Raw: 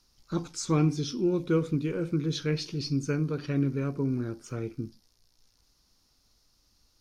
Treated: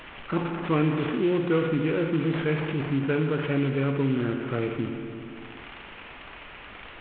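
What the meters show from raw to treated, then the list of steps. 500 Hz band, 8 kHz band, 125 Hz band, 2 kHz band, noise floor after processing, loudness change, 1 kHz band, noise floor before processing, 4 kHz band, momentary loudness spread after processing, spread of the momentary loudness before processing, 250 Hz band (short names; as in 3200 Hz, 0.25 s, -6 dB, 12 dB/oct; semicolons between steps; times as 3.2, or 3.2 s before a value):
+5.5 dB, under -40 dB, +1.5 dB, +10.5 dB, -44 dBFS, +3.5 dB, +8.0 dB, -69 dBFS, -0.5 dB, 18 LU, 10 LU, +3.5 dB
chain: CVSD 16 kbps; low shelf 200 Hz -11 dB; spring tank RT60 1.6 s, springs 30/51/58 ms, chirp 35 ms, DRR 8 dB; fast leveller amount 50%; gain +4.5 dB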